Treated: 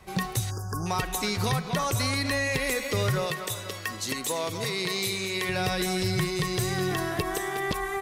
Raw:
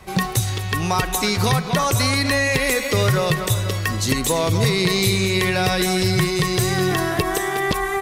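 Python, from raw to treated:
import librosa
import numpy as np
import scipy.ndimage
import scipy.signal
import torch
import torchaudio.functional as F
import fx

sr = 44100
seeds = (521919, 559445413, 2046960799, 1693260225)

y = fx.spec_erase(x, sr, start_s=0.51, length_s=0.35, low_hz=1700.0, high_hz=4700.0)
y = fx.highpass(y, sr, hz=390.0, slope=6, at=(3.26, 5.49))
y = y * librosa.db_to_amplitude(-8.0)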